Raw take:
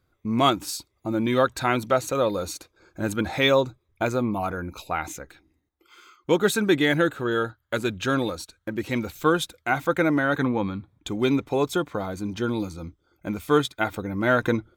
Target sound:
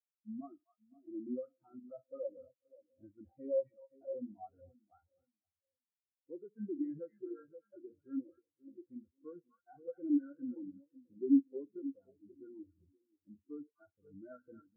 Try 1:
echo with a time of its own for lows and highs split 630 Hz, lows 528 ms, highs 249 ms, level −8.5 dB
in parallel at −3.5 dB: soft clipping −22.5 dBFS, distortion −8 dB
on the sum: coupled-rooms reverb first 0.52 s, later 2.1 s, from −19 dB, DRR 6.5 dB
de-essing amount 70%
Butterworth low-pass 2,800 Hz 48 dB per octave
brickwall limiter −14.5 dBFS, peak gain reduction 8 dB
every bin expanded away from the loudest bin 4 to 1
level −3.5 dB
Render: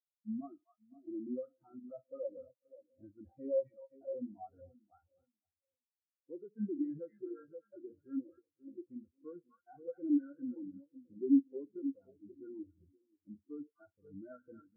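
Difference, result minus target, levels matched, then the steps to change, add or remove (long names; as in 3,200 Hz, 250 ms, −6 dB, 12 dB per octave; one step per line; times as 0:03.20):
soft clipping: distortion −6 dB
change: soft clipping −33 dBFS, distortion −3 dB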